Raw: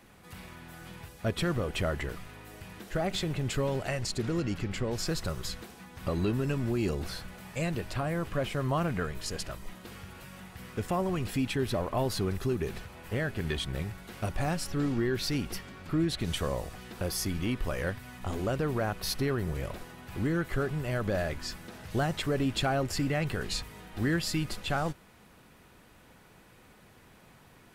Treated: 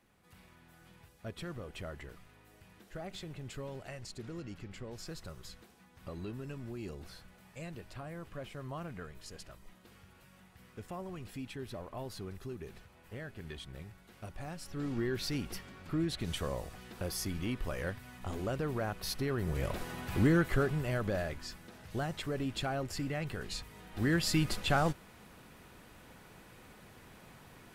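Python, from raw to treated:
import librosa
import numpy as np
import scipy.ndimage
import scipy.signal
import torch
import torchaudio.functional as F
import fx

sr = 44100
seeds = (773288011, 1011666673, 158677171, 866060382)

y = fx.gain(x, sr, db=fx.line((14.54, -13.0), (15.0, -5.0), (19.27, -5.0), (19.96, 6.0), (21.49, -7.0), (23.58, -7.0), (24.38, 1.5)))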